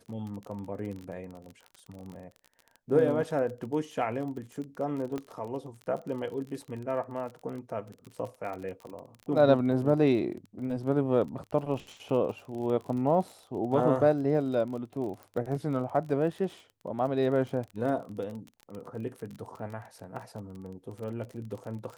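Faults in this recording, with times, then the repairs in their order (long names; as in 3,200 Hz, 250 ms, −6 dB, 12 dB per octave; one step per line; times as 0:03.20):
surface crackle 33 per second −37 dBFS
0:05.18: click −22 dBFS
0:15.23: click −31 dBFS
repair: click removal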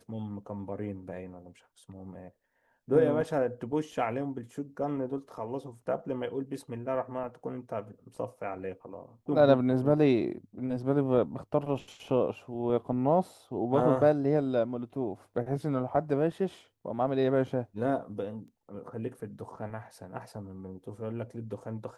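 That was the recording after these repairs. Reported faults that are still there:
0:05.18: click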